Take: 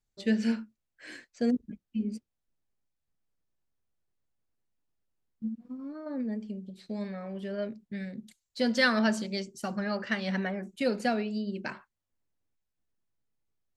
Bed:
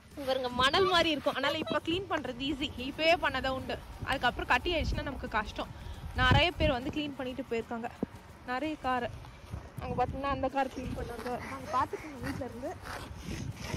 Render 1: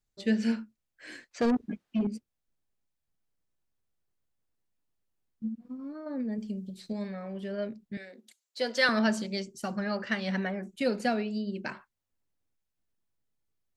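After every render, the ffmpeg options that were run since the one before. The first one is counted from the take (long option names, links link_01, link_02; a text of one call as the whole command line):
ffmpeg -i in.wav -filter_complex "[0:a]asettb=1/sr,asplit=3[link_01][link_02][link_03];[link_01]atrim=end=1.314[link_04];[link_02]atrim=start=1.31:end=2.07,asetpts=PTS-STARTPTS,afade=type=in:duration=0.004:curve=qsin,afade=type=out:start_time=0.756:duration=0.004:curve=qsin,asplit=2[link_05][link_06];[link_06]highpass=frequency=720:poles=1,volume=23dB,asoftclip=type=tanh:threshold=-18.5dB[link_07];[link_05][link_07]amix=inputs=2:normalize=0,lowpass=frequency=2100:poles=1,volume=-6dB[link_08];[link_03]atrim=start=2.066[link_09];[link_04][link_08]acrossfade=duration=0.004:curve1=hsin:curve2=qsin[link_10];[link_10][link_09]acrossfade=duration=0.004:curve1=qsin:curve2=hsin,asettb=1/sr,asplit=3[link_11][link_12][link_13];[link_11]atrim=end=6.384[link_14];[link_12]atrim=start=6.38:end=6.93,asetpts=PTS-STARTPTS,afade=type=in:duration=0.004:curve=qsin,afade=type=out:start_time=0.546:duration=0.004:curve=qsin,bass=frequency=250:gain=4,treble=frequency=4000:gain=9[link_15];[link_13]atrim=start=6.926[link_16];[link_14][link_15]acrossfade=duration=0.004:curve1=hsin:curve2=qsin[link_17];[link_17][link_16]acrossfade=duration=0.004:curve1=qsin:curve2=hsin,asettb=1/sr,asplit=3[link_18][link_19][link_20];[link_18]atrim=end=7.974[link_21];[link_19]atrim=start=7.97:end=8.89,asetpts=PTS-STARTPTS,afade=type=in:duration=0.004:curve=qsin,afade=type=out:start_time=0.916:duration=0.004:curve=qsin,highpass=frequency=340:width=0.5412,highpass=frequency=340:width=1.3066[link_22];[link_20]atrim=start=8.886[link_23];[link_21][link_22]acrossfade=duration=0.004:curve1=hsin:curve2=qsin[link_24];[link_24][link_23]acrossfade=duration=0.004:curve1=qsin:curve2=hsin" out.wav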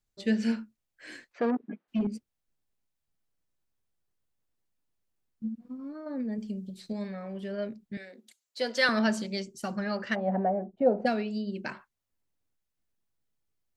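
ffmpeg -i in.wav -filter_complex "[0:a]asplit=3[link_01][link_02][link_03];[link_01]afade=type=out:start_time=1.32:duration=0.02[link_04];[link_02]highpass=240,lowpass=2100,afade=type=in:start_time=1.32:duration=0.02,afade=type=out:start_time=1.87:duration=0.02[link_05];[link_03]afade=type=in:start_time=1.87:duration=0.02[link_06];[link_04][link_05][link_06]amix=inputs=3:normalize=0,asplit=3[link_07][link_08][link_09];[link_07]afade=type=out:start_time=10.14:duration=0.02[link_10];[link_08]lowpass=frequency=710:width_type=q:width=5.1,afade=type=in:start_time=10.14:duration=0.02,afade=type=out:start_time=11.05:duration=0.02[link_11];[link_09]afade=type=in:start_time=11.05:duration=0.02[link_12];[link_10][link_11][link_12]amix=inputs=3:normalize=0" out.wav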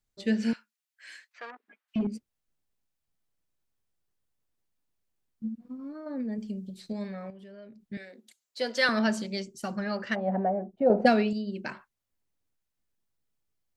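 ffmpeg -i in.wav -filter_complex "[0:a]asettb=1/sr,asplit=3[link_01][link_02][link_03];[link_01]atrim=end=0.534[link_04];[link_02]atrim=start=0.53:end=1.96,asetpts=PTS-STARTPTS,afade=type=in:duration=0.004:curve=qsin,afade=type=out:start_time=1.426:duration=0.004:curve=qsin,highpass=1400[link_05];[link_03]atrim=start=1.956[link_06];[link_04][link_05]acrossfade=duration=0.004:curve1=hsin:curve2=qsin[link_07];[link_07][link_06]acrossfade=duration=0.004:curve1=qsin:curve2=hsin,asettb=1/sr,asplit=3[link_08][link_09][link_10];[link_08]atrim=end=7.304[link_11];[link_09]atrim=start=7.3:end=7.85,asetpts=PTS-STARTPTS,afade=type=in:duration=0.004:curve=qsin,afade=type=out:start_time=0.546:duration=0.004:curve=qsin,acompressor=threshold=-49dB:ratio=3:attack=3.2:release=140:knee=1:detection=peak[link_12];[link_10]atrim=start=7.846[link_13];[link_11][link_12]acrossfade=duration=0.004:curve1=hsin:curve2=qsin[link_14];[link_14][link_13]acrossfade=duration=0.004:curve1=qsin:curve2=hsin,asplit=3[link_15][link_16][link_17];[link_15]atrim=end=10.902[link_18];[link_16]atrim=start=10.898:end=11.332,asetpts=PTS-STARTPTS,volume=6.5dB[link_19];[link_17]atrim=start=11.328[link_20];[link_18][link_19]acrossfade=duration=0.004:curve1=hsin:curve2=hsin[link_21];[link_21][link_20]acrossfade=duration=0.004:curve1=hsin:curve2=hsin" out.wav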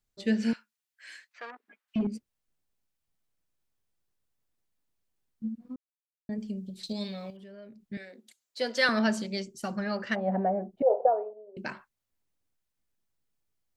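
ffmpeg -i in.wav -filter_complex "[0:a]asettb=1/sr,asplit=3[link_01][link_02][link_03];[link_01]atrim=end=6.834[link_04];[link_02]atrim=start=6.83:end=7.37,asetpts=PTS-STARTPTS,afade=type=in:duration=0.004:curve=qsin,afade=type=out:start_time=0.536:duration=0.004:curve=qsin,highshelf=frequency=2400:width_type=q:width=3:gain=10.5[link_05];[link_03]atrim=start=7.366[link_06];[link_04][link_05]acrossfade=duration=0.004:curve1=hsin:curve2=qsin[link_07];[link_07][link_06]acrossfade=duration=0.004:curve1=qsin:curve2=hsin,asettb=1/sr,asplit=3[link_08][link_09][link_10];[link_08]atrim=end=10.824[link_11];[link_09]atrim=start=10.82:end=11.57,asetpts=PTS-STARTPTS,afade=type=in:duration=0.004:curve=qsin,afade=type=out:start_time=0.746:duration=0.004:curve=qsin,asuperpass=centerf=690:order=8:qfactor=1.1[link_12];[link_10]atrim=start=11.566[link_13];[link_11][link_12]acrossfade=duration=0.004:curve1=hsin:curve2=qsin[link_14];[link_14][link_13]acrossfade=duration=0.004:curve1=qsin:curve2=hsin,asplit=3[link_15][link_16][link_17];[link_15]atrim=end=5.76,asetpts=PTS-STARTPTS,afade=type=out:start_time=5.756:duration=0.004:curve=hsin[link_18];[link_16]atrim=start=5.76:end=6.29,asetpts=PTS-STARTPTS,volume=0[link_19];[link_17]atrim=start=6.29,asetpts=PTS-STARTPTS,afade=type=in:duration=0.004:curve=hsin[link_20];[link_18][link_19][link_20]concat=n=3:v=0:a=1" out.wav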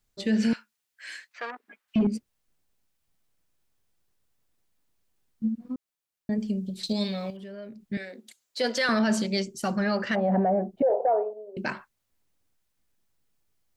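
ffmpeg -i in.wav -af "acontrast=78,alimiter=limit=-16.5dB:level=0:latency=1:release=12" out.wav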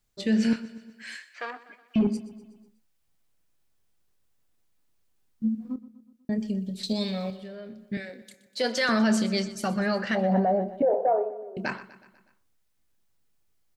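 ffmpeg -i in.wav -filter_complex "[0:a]asplit=2[link_01][link_02];[link_02]adelay=27,volume=-14dB[link_03];[link_01][link_03]amix=inputs=2:normalize=0,aecho=1:1:123|246|369|492|615:0.141|0.0805|0.0459|0.0262|0.0149" out.wav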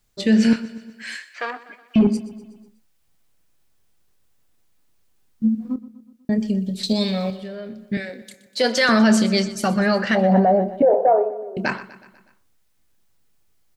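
ffmpeg -i in.wav -af "volume=7.5dB" out.wav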